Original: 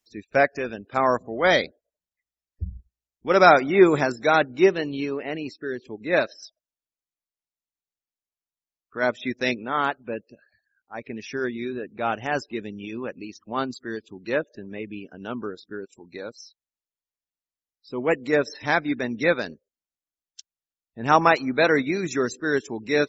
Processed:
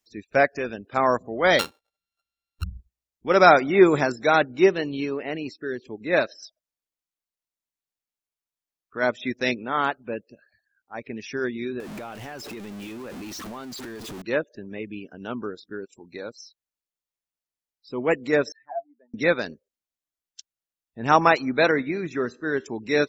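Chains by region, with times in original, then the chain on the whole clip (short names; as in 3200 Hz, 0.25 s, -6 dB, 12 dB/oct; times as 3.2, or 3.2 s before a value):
1.59–2.64 sample sorter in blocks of 32 samples + bell 3700 Hz +8 dB 0.73 oct
11.8–14.22 zero-crossing step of -31 dBFS + compressor 16:1, threshold -33 dBFS + transient shaper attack -4 dB, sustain +5 dB
18.52–19.14 spectral contrast raised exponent 2.5 + bell 770 Hz -3.5 dB 0.56 oct + auto-wah 680–1800 Hz, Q 21, down, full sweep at -21 dBFS
21.71–22.66 LPF 2800 Hz + resonator 79 Hz, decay 0.41 s, mix 30%
whole clip: dry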